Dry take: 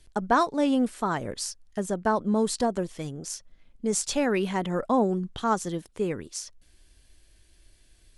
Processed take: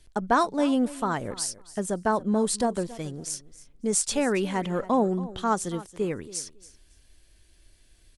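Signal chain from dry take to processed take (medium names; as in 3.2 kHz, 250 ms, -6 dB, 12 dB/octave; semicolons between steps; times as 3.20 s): dynamic bell 9.1 kHz, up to +7 dB, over -53 dBFS, Q 2.8; on a send: feedback delay 277 ms, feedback 17%, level -18 dB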